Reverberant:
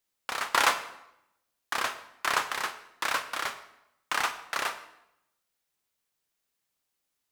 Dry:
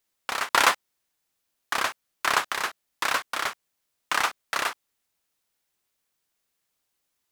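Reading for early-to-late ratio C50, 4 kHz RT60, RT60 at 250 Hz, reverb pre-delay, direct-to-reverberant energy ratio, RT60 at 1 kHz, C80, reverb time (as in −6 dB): 12.0 dB, 0.70 s, 0.95 s, 18 ms, 9.0 dB, 0.80 s, 14.0 dB, 0.80 s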